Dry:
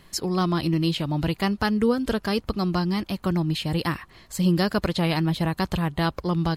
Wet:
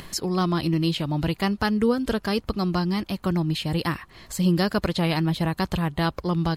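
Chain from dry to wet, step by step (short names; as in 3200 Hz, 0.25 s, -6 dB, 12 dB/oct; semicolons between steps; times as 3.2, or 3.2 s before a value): upward compressor, threshold -31 dBFS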